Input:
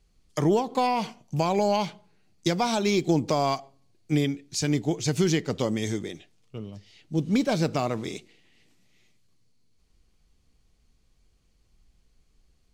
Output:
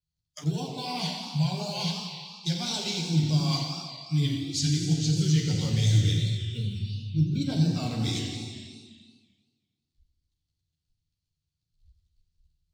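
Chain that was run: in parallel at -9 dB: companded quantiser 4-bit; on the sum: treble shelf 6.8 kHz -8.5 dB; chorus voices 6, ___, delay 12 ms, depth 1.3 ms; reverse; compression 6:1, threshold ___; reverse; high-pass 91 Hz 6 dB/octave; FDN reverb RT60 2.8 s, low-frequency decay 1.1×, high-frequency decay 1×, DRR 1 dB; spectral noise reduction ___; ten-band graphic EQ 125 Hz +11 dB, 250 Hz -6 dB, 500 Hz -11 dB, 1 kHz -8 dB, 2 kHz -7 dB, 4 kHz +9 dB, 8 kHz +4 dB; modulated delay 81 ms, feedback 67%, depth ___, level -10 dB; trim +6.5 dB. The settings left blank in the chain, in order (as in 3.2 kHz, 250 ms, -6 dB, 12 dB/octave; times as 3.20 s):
2.8 Hz, -33 dBFS, 26 dB, 220 cents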